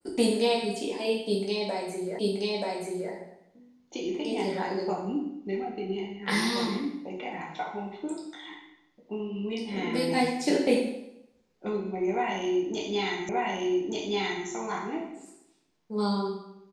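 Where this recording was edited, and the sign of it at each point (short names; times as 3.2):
2.19 repeat of the last 0.93 s
13.29 repeat of the last 1.18 s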